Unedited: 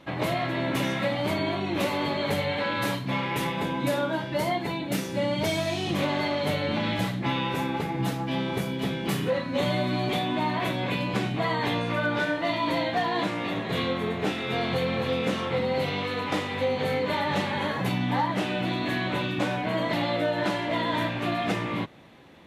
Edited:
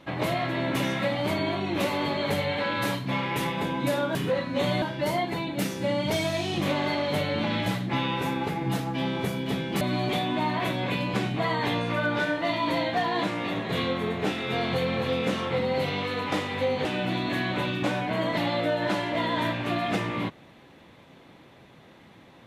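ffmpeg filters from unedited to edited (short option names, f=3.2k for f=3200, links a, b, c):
-filter_complex "[0:a]asplit=5[a][b][c][d][e];[a]atrim=end=4.152[f];[b]atrim=start=9.138:end=9.812[g];[c]atrim=start=4.148:end=9.142[h];[d]atrim=start=9.808:end=16.852[i];[e]atrim=start=18.408[j];[f][g]acrossfade=d=0.004:c1=hsin:c2=hsin[k];[k][h]acrossfade=d=0.004:c1=hsin:c2=hsin[l];[l][i]acrossfade=d=0.004:c1=hsin:c2=hsin[m];[m][j]acrossfade=d=0.004:c1=hsin:c2=hsin"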